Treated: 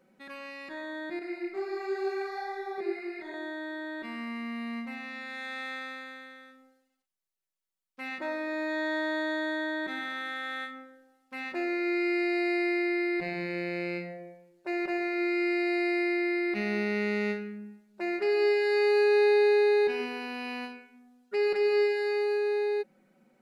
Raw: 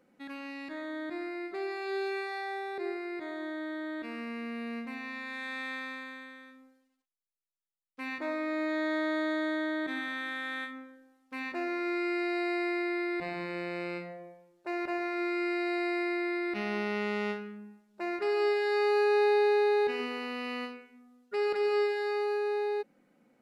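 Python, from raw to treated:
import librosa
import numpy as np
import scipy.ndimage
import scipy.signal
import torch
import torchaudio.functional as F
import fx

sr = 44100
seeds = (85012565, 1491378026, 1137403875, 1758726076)

y = x + 0.71 * np.pad(x, (int(5.3 * sr / 1000.0), 0))[:len(x)]
y = fx.chorus_voices(y, sr, voices=6, hz=1.3, base_ms=25, depth_ms=3.0, mix_pct=60, at=(1.19, 3.34))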